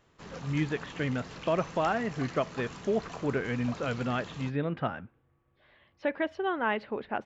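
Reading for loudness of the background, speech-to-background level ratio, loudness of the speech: -44.5 LUFS, 12.5 dB, -32.0 LUFS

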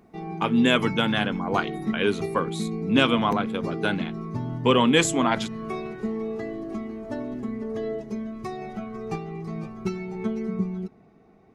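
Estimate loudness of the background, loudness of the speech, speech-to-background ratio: -32.0 LUFS, -24.0 LUFS, 8.0 dB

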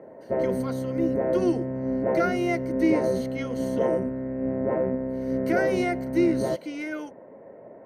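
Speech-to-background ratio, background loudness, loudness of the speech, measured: -2.0 dB, -27.5 LUFS, -29.5 LUFS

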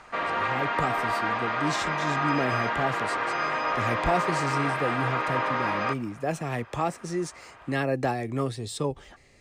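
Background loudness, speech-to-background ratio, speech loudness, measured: -27.5 LUFS, -4.0 dB, -31.5 LUFS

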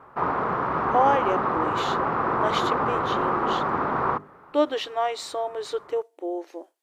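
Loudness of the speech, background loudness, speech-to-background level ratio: -28.5 LUFS, -25.0 LUFS, -3.5 dB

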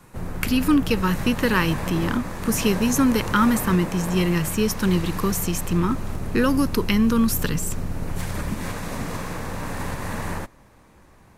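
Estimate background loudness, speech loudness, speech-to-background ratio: -31.0 LUFS, -22.5 LUFS, 8.5 dB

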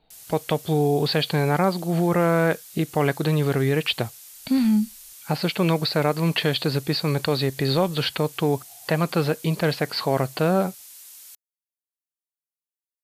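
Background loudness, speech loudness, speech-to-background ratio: -41.5 LUFS, -23.0 LUFS, 18.5 dB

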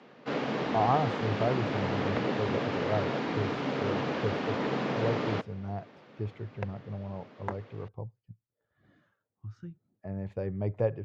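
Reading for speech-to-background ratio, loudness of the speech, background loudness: -3.0 dB, -35.0 LUFS, -32.0 LUFS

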